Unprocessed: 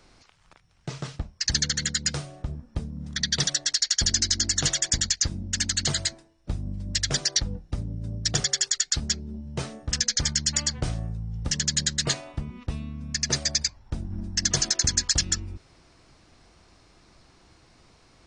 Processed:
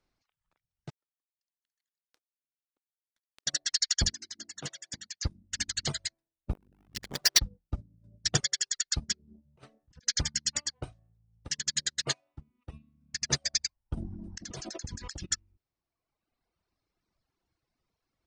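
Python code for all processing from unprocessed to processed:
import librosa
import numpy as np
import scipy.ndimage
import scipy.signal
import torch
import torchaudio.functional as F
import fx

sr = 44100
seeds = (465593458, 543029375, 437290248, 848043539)

y = fx.chain(x, sr, fx.steep_highpass(hz=260.0, slope=48),
    fx.over_compress(threshold_db=-32.0, ratio=-1.0),
    fx.power_curve(exponent=3.0), at=(0.9, 3.47))
y = fx.chain(y, sr, fx.highpass(hz=170.0, slope=12),
    fx.high_shelf(hz=2500.0, db=-6.0), at=(4.13, 5.23))
y = fx.chain(y, sr, fx.halfwave_hold(),
    fx.transformer_sat(knee_hz=1000.0), at=(6.53, 7.39))
y = fx.chain(y, sr, fx.high_shelf(hz=7400.0, db=-5.0),
    fx.over_compress(threshold_db=-34.0, ratio=-1.0),
    fx.doppler_dist(depth_ms=0.15), at=(9.19, 10.04))
y = fx.chain(y, sr, fx.highpass(hz=89.0, slope=6),
    fx.peak_eq(hz=190.0, db=-14.5, octaves=0.28), at=(10.61, 12.73))
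y = fx.chain(y, sr, fx.peak_eq(hz=390.0, db=6.5, octaves=2.3),
    fx.gate_flip(shuts_db=-13.0, range_db=-25),
    fx.env_flatten(amount_pct=100), at=(13.97, 15.26))
y = fx.dereverb_blind(y, sr, rt60_s=1.9)
y = fx.high_shelf(y, sr, hz=7800.0, db=-7.0)
y = fx.upward_expand(y, sr, threshold_db=-39.0, expansion=2.5)
y = F.gain(torch.from_numpy(y), 4.0).numpy()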